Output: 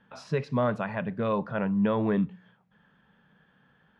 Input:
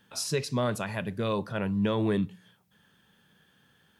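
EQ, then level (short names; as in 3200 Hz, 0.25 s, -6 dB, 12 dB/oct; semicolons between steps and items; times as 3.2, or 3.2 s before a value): LPF 1700 Hz 12 dB/oct; bell 97 Hz -13.5 dB 0.34 oct; bell 350 Hz -7 dB 0.57 oct; +4.0 dB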